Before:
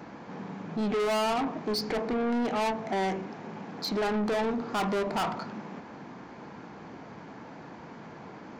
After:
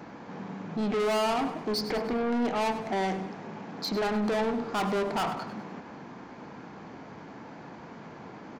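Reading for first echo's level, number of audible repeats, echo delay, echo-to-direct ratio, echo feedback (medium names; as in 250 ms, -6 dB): -12.5 dB, 4, 100 ms, -11.5 dB, 46%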